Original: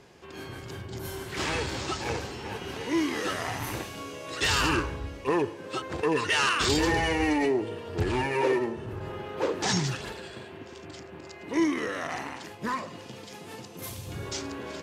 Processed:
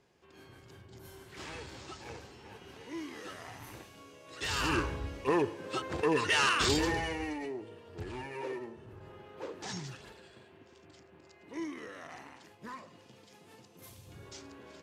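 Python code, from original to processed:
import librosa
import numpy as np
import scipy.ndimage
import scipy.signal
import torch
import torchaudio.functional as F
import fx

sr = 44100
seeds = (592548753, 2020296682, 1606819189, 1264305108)

y = fx.gain(x, sr, db=fx.line((4.25, -14.5), (4.83, -2.5), (6.65, -2.5), (7.41, -14.0)))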